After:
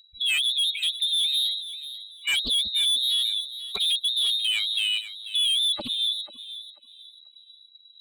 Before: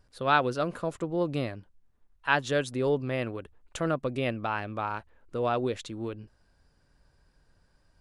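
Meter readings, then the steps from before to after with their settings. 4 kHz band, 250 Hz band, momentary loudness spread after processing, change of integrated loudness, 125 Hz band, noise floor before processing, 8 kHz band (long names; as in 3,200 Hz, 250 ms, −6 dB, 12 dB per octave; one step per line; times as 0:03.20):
+23.0 dB, −16.5 dB, 12 LU, +7.5 dB, below −20 dB, −68 dBFS, +14.5 dB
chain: expanding power law on the bin magnitudes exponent 3.1
automatic gain control gain up to 4 dB
in parallel at +2 dB: brickwall limiter −20.5 dBFS, peak gain reduction 10 dB
on the sum: voice inversion scrambler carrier 3,900 Hz
hard clipping −19.5 dBFS, distortion −10 dB
on a send: feedback echo with a high-pass in the loop 490 ms, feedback 27%, high-pass 510 Hz, level −13 dB
on the sum: highs frequency-modulated by the lows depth 0.23 ms
level −1.5 dB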